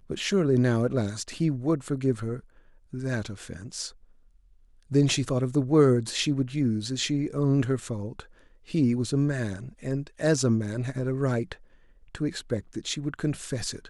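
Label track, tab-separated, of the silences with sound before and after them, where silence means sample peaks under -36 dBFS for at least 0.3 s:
2.390000	2.930000	silence
3.890000	4.910000	silence
8.200000	8.700000	silence
11.540000	12.150000	silence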